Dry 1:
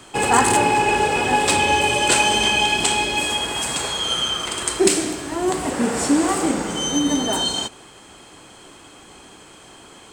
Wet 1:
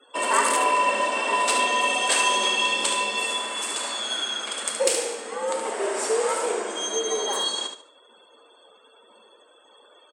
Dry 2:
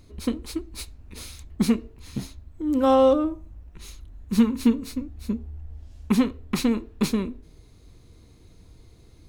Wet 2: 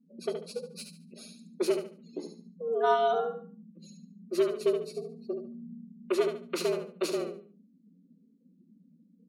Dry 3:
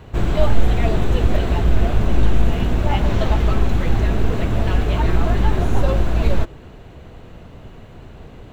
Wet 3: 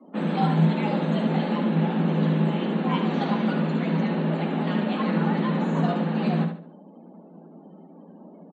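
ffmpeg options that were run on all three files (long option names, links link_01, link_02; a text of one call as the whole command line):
ffmpeg -i in.wav -filter_complex "[0:a]afreqshift=160,lowshelf=frequency=370:gain=-5.5,afftdn=noise_reduction=35:noise_floor=-43,asplit=2[link_01][link_02];[link_02]aecho=0:1:72|144|216|288:0.447|0.13|0.0376|0.0109[link_03];[link_01][link_03]amix=inputs=2:normalize=0,volume=-5dB" out.wav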